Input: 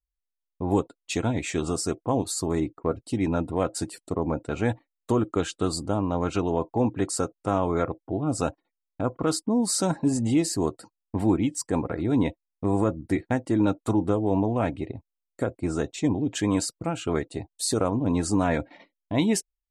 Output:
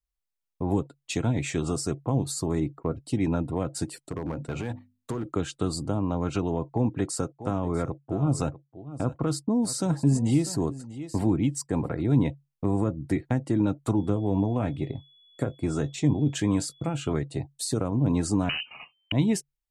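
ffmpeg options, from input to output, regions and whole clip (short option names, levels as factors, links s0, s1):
-filter_complex "[0:a]asettb=1/sr,asplit=3[s0][s1][s2];[s0]atrim=end=4.064[s3];[s1]atrim=start=4.06:end=5.26,asetpts=PTS-STARTPTS,afade=t=in:d=0.004:c=qsin,afade=t=out:st=1.196:d=0.004:c=qsin,bandreject=f=50:t=h:w=6,bandreject=f=100:t=h:w=6,bandreject=f=150:t=h:w=6,bandreject=f=200:t=h:w=6,bandreject=f=250:t=h:w=6,acompressor=threshold=0.0501:ratio=10:attack=3.2:release=140:knee=1:detection=peak,asoftclip=type=hard:threshold=0.0473[s4];[s2]atrim=start=5.256[s5];[s3][s4]acrossfade=d=0.004:c1=hsin:c2=qsin[s6];[s6][s5]acrossfade=d=0.004:c1=qsin:c2=hsin,asettb=1/sr,asplit=3[s7][s8][s9];[s7]atrim=end=6.744[s10];[s8]atrim=start=6.74:end=11.89,asetpts=PTS-STARTPTS,afade=t=in:d=0.004:c=qsin,afade=t=out:st=5.146:d=0.004:c=qsin,agate=range=0.0224:threshold=0.00891:ratio=3:release=100:detection=peak,aecho=1:1:644:0.158,atrim=end_sample=227115[s11];[s9]atrim=start=11.886[s12];[s10][s11]acrossfade=d=0.004:c1=hsin:c2=qsin[s13];[s13][s12]acrossfade=d=0.004:c1=qsin:c2=hsin,asettb=1/sr,asplit=3[s14][s15][s16];[s14]atrim=end=13.974[s17];[s15]atrim=start=13.97:end=17.13,asetpts=PTS-STARTPTS,afade=t=in:d=0.004:c=qsin,afade=t=out:st=3.156:d=0.004:c=qsin,asplit=2[s18][s19];[s19]adelay=20,volume=0.224[s20];[s18][s20]amix=inputs=2:normalize=0,atrim=end_sample=139356,aeval=exprs='val(0)+0.00158*sin(2*PI*3400*n/s)':c=same[s21];[s16]atrim=start=17.126[s22];[s17][s21]acrossfade=d=0.004:c1=hsin:c2=qsin[s23];[s23][s22]acrossfade=d=0.004:c1=qsin:c2=hsin,asettb=1/sr,asplit=3[s24][s25][s26];[s24]atrim=end=18.494[s27];[s25]atrim=start=18.49:end=19.12,asetpts=PTS-STARTPTS,afade=t=in:d=0.004:c=qsin,afade=t=out:st=0.626:d=0.004:c=qsin,equalizer=f=1700:t=o:w=0.59:g=-7.5,aeval=exprs='0.224*sin(PI/2*2.51*val(0)/0.224)':c=same,lowpass=f=2600:t=q:w=0.5098,lowpass=f=2600:t=q:w=0.6013,lowpass=f=2600:t=q:w=0.9,lowpass=f=2600:t=q:w=2.563,afreqshift=-3100[s28];[s26]atrim=start=19.116[s29];[s27][s28]acrossfade=d=0.004:c1=hsin:c2=qsin[s30];[s30][s29]acrossfade=d=0.004:c1=qsin:c2=hsin,equalizer=f=140:w=7.3:g=12,acrossover=split=290[s31][s32];[s32]acompressor=threshold=0.0355:ratio=6[s33];[s31][s33]amix=inputs=2:normalize=0"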